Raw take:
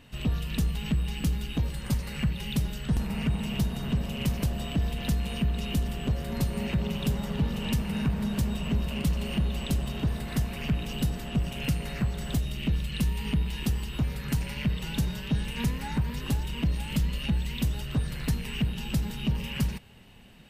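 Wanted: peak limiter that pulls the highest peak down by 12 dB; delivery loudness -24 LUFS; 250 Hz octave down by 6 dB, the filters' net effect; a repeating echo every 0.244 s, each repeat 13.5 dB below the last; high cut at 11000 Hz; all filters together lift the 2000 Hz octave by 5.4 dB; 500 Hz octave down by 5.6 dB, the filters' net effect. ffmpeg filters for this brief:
-af "lowpass=11k,equalizer=f=250:t=o:g=-8.5,equalizer=f=500:t=o:g=-5,equalizer=f=2k:t=o:g=7.5,alimiter=level_in=5.5dB:limit=-24dB:level=0:latency=1,volume=-5.5dB,aecho=1:1:244|488:0.211|0.0444,volume=13.5dB"

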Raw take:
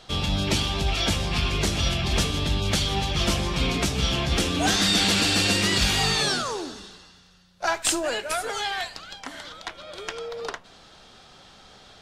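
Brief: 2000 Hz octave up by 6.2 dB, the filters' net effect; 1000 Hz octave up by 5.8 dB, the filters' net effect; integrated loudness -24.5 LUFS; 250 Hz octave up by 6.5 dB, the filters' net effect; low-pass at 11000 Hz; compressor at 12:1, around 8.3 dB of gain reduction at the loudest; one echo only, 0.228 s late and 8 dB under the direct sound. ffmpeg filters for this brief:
-af "lowpass=11k,equalizer=f=250:t=o:g=8.5,equalizer=f=1k:t=o:g=5.5,equalizer=f=2k:t=o:g=6.5,acompressor=threshold=-22dB:ratio=12,aecho=1:1:228:0.398,volume=1.5dB"

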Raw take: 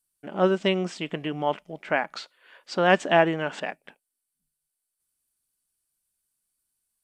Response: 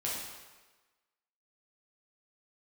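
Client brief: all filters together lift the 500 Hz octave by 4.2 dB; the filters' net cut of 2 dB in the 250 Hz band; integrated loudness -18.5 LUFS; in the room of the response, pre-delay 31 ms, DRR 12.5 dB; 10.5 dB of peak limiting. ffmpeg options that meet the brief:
-filter_complex "[0:a]equalizer=f=250:t=o:g=-8,equalizer=f=500:t=o:g=7.5,alimiter=limit=-14dB:level=0:latency=1,asplit=2[a][b];[1:a]atrim=start_sample=2205,adelay=31[c];[b][c]afir=irnorm=-1:irlink=0,volume=-17dB[d];[a][d]amix=inputs=2:normalize=0,volume=8.5dB"

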